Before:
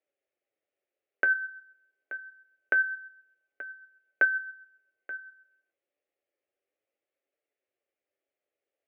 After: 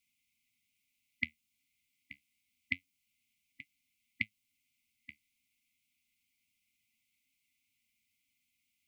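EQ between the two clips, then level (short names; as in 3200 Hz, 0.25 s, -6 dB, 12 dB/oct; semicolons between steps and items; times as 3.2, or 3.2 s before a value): dynamic EQ 1900 Hz, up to -6 dB, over -38 dBFS, Q 1.2; brick-wall FIR band-stop 270–2000 Hz; +14.0 dB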